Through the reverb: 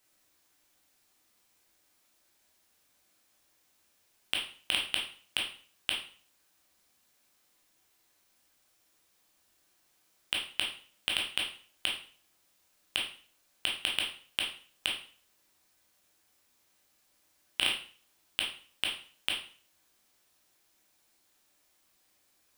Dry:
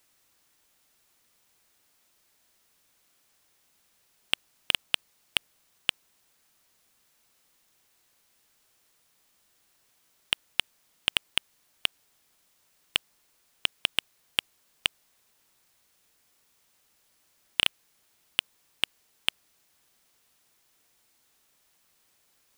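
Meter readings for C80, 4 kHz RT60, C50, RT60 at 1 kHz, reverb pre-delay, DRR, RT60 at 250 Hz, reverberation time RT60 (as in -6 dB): 10.5 dB, 0.40 s, 5.5 dB, 0.45 s, 6 ms, -2.5 dB, 0.45 s, 0.45 s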